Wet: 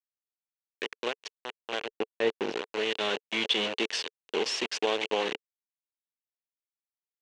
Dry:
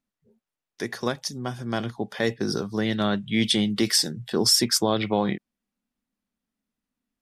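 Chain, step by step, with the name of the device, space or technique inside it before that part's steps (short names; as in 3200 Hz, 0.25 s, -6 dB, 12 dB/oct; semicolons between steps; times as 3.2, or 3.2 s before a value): hand-held game console (bit-crush 4-bit; speaker cabinet 430–5500 Hz, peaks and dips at 440 Hz +7 dB, 680 Hz -3 dB, 1300 Hz -5 dB, 2800 Hz +9 dB, 5100 Hz -9 dB); 1.88–2.53 tilt -2.5 dB/oct; gain -5 dB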